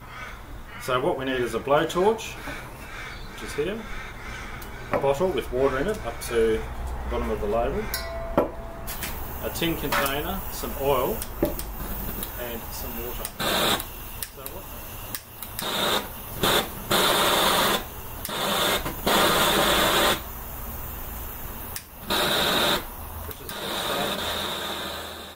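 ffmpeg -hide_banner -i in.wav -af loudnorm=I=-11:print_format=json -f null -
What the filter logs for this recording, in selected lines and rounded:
"input_i" : "-25.6",
"input_tp" : "-7.1",
"input_lra" : "5.4",
"input_thresh" : "-36.0",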